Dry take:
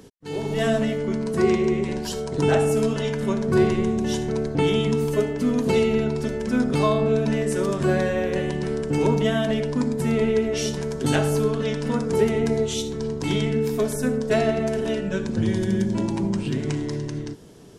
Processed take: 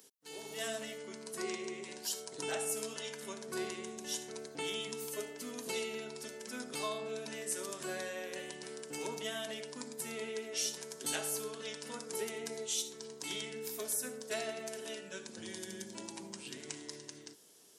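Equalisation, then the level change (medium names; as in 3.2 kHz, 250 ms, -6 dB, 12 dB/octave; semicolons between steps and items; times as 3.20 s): high-pass 69 Hz; differentiator; peaking EQ 350 Hz +7 dB 2.8 oct; -2.0 dB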